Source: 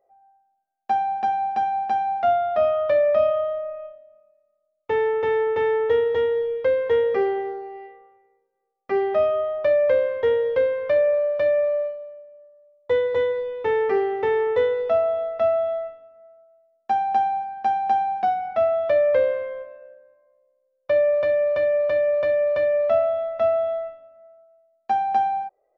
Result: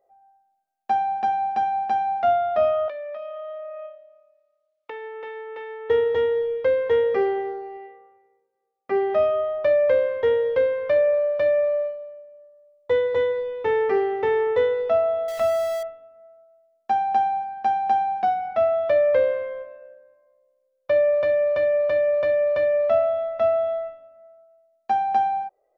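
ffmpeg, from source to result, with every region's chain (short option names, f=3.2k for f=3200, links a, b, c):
-filter_complex "[0:a]asettb=1/sr,asplit=3[a][b][c];[a]atrim=end=2.884[d];[b]atrim=start=2.88:end=5.9,asetpts=PTS-STARTPTS,afade=t=in:d=0.004:c=qsin,afade=t=out:st=3.016:d=0.004:c=qsin,acompressor=threshold=-32dB:ratio=8:attack=3.2:release=140:knee=1:detection=peak,highpass=400,lowpass=3.5k,highshelf=f=2k:g=9.5[e];[c]atrim=start=5.896[f];[d][e]acrossfade=d=0.004:c1=hsin:c2=qsin[g];[g][f]acrossfade=d=0.004:c1=qsin:c2=hsin,asettb=1/sr,asplit=3[h][i][j];[h]atrim=end=7.774[k];[i]atrim=start=7.77:end=9.1,asetpts=PTS-STARTPTS,afade=t=in:d=0.004:c=qsin,afade=t=out:st=1.326:d=0.004:c=qsin,highpass=83,highshelf=f=3.7k:g=-6.5[l];[j]atrim=start=9.096[m];[k][l]acrossfade=d=0.004:c1=hsin:c2=qsin[n];[n][m]acrossfade=d=0.004:c1=qsin:c2=hsin,asettb=1/sr,asplit=3[o][p][q];[o]atrim=end=15.284[r];[p]atrim=start=15.28:end=15.83,asetpts=PTS-STARTPTS,afade=t=in:d=0.004:c=qsin,afade=t=out:st=0.546:d=0.004:c=qsin,aeval=exprs='val(0)+0.5*0.0355*sgn(val(0))':c=same,equalizer=f=370:w=0.77:g=-4.5[s];[q]atrim=start=15.826[t];[r][s]acrossfade=d=0.004:c1=hsin:c2=qsin[u];[u][t]acrossfade=d=0.004:c1=qsin:c2=hsin"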